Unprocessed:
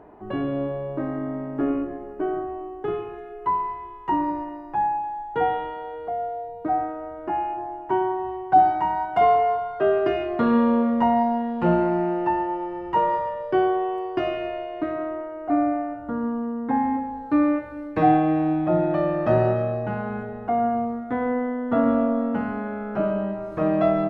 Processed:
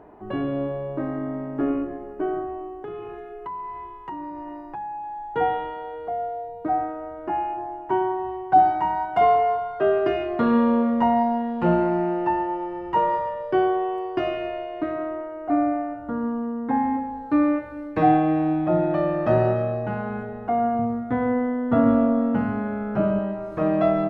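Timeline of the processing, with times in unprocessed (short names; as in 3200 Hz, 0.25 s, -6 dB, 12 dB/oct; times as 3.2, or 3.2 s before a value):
2.69–5.3 compressor, threshold -31 dBFS
20.79–23.19 bell 110 Hz +11.5 dB 1.3 oct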